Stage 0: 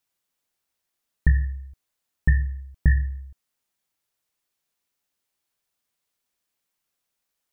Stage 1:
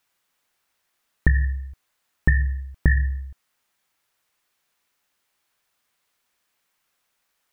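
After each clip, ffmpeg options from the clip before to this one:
ffmpeg -i in.wav -af "equalizer=frequency=1500:width_type=o:width=2.4:gain=7,acompressor=threshold=-18dB:ratio=6,volume=5dB" out.wav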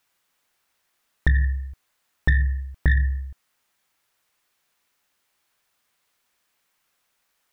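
ffmpeg -i in.wav -af "asoftclip=type=tanh:threshold=-11dB,volume=1.5dB" out.wav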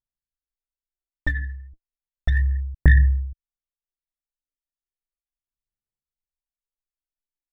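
ffmpeg -i in.wav -af "anlmdn=0.0631,aphaser=in_gain=1:out_gain=1:delay=3.5:decay=0.75:speed=0.34:type=sinusoidal,volume=-6.5dB" out.wav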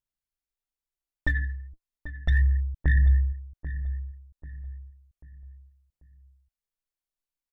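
ffmpeg -i in.wav -filter_complex "[0:a]alimiter=limit=-15dB:level=0:latency=1:release=10,asplit=2[link_01][link_02];[link_02]adelay=789,lowpass=frequency=1600:poles=1,volume=-12dB,asplit=2[link_03][link_04];[link_04]adelay=789,lowpass=frequency=1600:poles=1,volume=0.4,asplit=2[link_05][link_06];[link_06]adelay=789,lowpass=frequency=1600:poles=1,volume=0.4,asplit=2[link_07][link_08];[link_08]adelay=789,lowpass=frequency=1600:poles=1,volume=0.4[link_09];[link_01][link_03][link_05][link_07][link_09]amix=inputs=5:normalize=0" out.wav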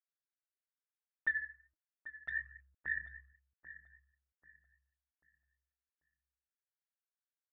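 ffmpeg -i in.wav -af "bandpass=frequency=1600:width_type=q:width=3.7:csg=0,volume=-1.5dB" out.wav

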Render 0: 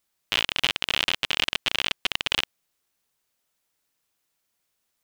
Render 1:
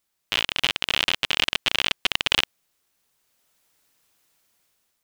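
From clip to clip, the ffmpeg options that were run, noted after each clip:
ffmpeg -i in.wav -af "dynaudnorm=framelen=290:gausssize=5:maxgain=9.5dB" out.wav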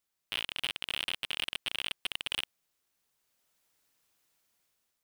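ffmpeg -i in.wav -af "asoftclip=type=tanh:threshold=-12dB,volume=-7.5dB" out.wav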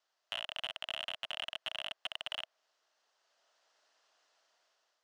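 ffmpeg -i in.wav -filter_complex "[0:a]highpass=420,equalizer=frequency=640:width_type=q:width=4:gain=8,equalizer=frequency=2300:width_type=q:width=4:gain=-9,equalizer=frequency=3700:width_type=q:width=4:gain=-4,lowpass=frequency=6000:width=0.5412,lowpass=frequency=6000:width=1.3066,asplit=2[link_01][link_02];[link_02]highpass=frequency=720:poles=1,volume=15dB,asoftclip=type=tanh:threshold=-19.5dB[link_03];[link_01][link_03]amix=inputs=2:normalize=0,lowpass=frequency=4300:poles=1,volume=-6dB,acrossover=split=710|3200[link_04][link_05][link_06];[link_04]acompressor=threshold=-52dB:ratio=4[link_07];[link_05]acompressor=threshold=-37dB:ratio=4[link_08];[link_06]acompressor=threshold=-46dB:ratio=4[link_09];[link_07][link_08][link_09]amix=inputs=3:normalize=0" out.wav

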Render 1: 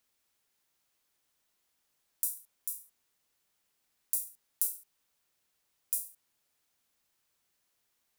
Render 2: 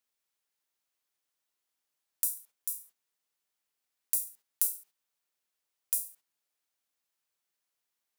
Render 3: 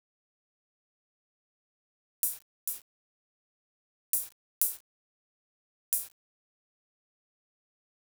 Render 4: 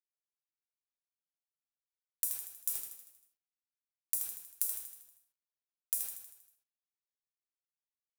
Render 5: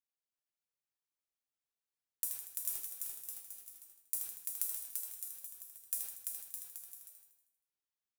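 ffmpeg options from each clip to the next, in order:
ffmpeg -i in.wav -af "agate=range=-10dB:threshold=-57dB:ratio=16:detection=peak,lowshelf=frequency=220:gain=-9.5,volume=2.5dB" out.wav
ffmpeg -i in.wav -af "aeval=exprs='val(0)*gte(abs(val(0)),0.00891)':channel_layout=same" out.wav
ffmpeg -i in.wav -af "acompressor=threshold=-32dB:ratio=6,aecho=1:1:79|158|237|316|395|474|553:0.473|0.26|0.143|0.0787|0.0433|0.0238|0.0131,volume=3dB" out.wav
ffmpeg -i in.wav -af "aecho=1:1:340|612|829.6|1004|1143:0.631|0.398|0.251|0.158|0.1,acrusher=bits=6:mode=log:mix=0:aa=0.000001,volume=-3.5dB" out.wav

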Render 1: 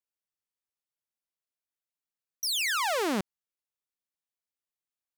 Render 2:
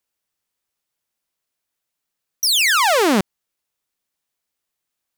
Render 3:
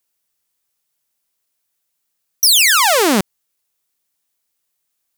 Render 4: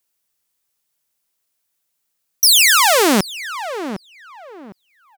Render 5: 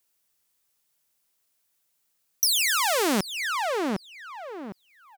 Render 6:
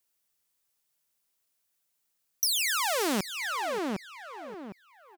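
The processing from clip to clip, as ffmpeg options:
ffmpeg -i in.wav -af "acontrast=72,volume=6dB" out.wav
ffmpeg -i in.wav -af "highshelf=frequency=5400:gain=8.5,volume=1.5dB" out.wav
ffmpeg -i in.wav -filter_complex "[0:a]asplit=2[link_01][link_02];[link_02]adelay=757,lowpass=frequency=1700:poles=1,volume=-10.5dB,asplit=2[link_03][link_04];[link_04]adelay=757,lowpass=frequency=1700:poles=1,volume=0.27,asplit=2[link_05][link_06];[link_06]adelay=757,lowpass=frequency=1700:poles=1,volume=0.27[link_07];[link_01][link_03][link_05][link_07]amix=inputs=4:normalize=0" out.wav
ffmpeg -i in.wav -af "acompressor=threshold=-24dB:ratio=3" out.wav
ffmpeg -i in.wav -af "aecho=1:1:578:0.15,volume=-4.5dB" out.wav

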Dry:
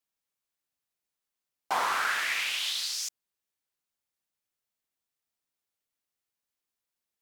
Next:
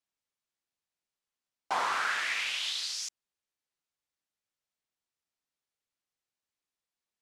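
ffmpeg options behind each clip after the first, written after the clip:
ffmpeg -i in.wav -af "lowpass=8100,volume=-2dB" out.wav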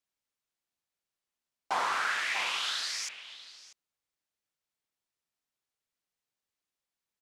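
ffmpeg -i in.wav -filter_complex "[0:a]asplit=2[link_01][link_02];[link_02]adelay=641.4,volume=-8dB,highshelf=frequency=4000:gain=-14.4[link_03];[link_01][link_03]amix=inputs=2:normalize=0" out.wav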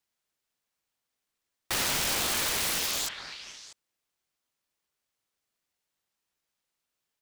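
ffmpeg -i in.wav -af "aeval=exprs='(mod(28.2*val(0)+1,2)-1)/28.2':channel_layout=same,aeval=exprs='val(0)*sin(2*PI*1100*n/s+1100*0.4/4*sin(2*PI*4*n/s))':channel_layout=same,volume=8.5dB" out.wav

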